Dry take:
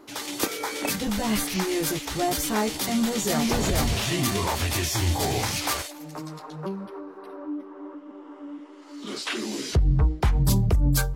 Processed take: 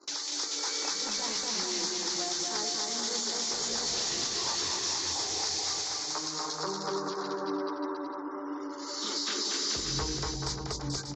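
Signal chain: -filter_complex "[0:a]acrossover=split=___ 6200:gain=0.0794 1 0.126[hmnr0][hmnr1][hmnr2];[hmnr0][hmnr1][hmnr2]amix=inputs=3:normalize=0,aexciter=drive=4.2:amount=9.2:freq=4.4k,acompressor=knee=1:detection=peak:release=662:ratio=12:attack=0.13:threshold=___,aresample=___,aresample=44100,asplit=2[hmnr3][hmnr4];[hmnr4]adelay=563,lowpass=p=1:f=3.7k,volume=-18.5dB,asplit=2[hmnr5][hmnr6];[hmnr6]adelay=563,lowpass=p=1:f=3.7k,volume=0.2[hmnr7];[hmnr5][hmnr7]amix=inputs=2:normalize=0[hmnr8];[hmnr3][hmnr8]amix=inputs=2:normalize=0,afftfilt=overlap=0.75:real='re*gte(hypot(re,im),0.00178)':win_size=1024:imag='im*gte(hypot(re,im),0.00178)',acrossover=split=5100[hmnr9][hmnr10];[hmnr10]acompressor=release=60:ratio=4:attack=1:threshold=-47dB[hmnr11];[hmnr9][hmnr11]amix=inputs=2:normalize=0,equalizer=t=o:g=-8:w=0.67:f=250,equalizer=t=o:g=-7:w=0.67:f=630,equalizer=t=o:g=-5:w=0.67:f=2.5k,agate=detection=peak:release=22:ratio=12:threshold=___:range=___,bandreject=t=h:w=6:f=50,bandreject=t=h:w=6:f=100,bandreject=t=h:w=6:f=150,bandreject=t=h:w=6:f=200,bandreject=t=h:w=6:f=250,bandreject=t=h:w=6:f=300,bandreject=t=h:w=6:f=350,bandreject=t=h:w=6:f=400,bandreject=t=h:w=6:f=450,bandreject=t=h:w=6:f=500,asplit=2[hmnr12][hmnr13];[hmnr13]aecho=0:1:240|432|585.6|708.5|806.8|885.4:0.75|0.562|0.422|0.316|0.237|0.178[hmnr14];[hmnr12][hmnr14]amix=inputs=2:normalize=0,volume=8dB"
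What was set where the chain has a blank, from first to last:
240, -30dB, 16000, -56dB, -19dB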